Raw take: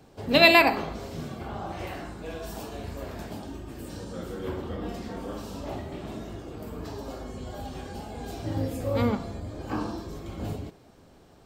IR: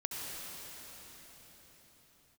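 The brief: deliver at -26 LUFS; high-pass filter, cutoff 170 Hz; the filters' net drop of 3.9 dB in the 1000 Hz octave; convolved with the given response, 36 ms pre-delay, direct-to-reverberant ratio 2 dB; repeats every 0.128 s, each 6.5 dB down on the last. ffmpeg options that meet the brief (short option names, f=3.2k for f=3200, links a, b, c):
-filter_complex "[0:a]highpass=170,equalizer=f=1k:t=o:g=-5.5,aecho=1:1:128|256|384|512|640|768:0.473|0.222|0.105|0.0491|0.0231|0.0109,asplit=2[a][b];[1:a]atrim=start_sample=2205,adelay=36[c];[b][c]afir=irnorm=-1:irlink=0,volume=-5dB[d];[a][d]amix=inputs=2:normalize=0"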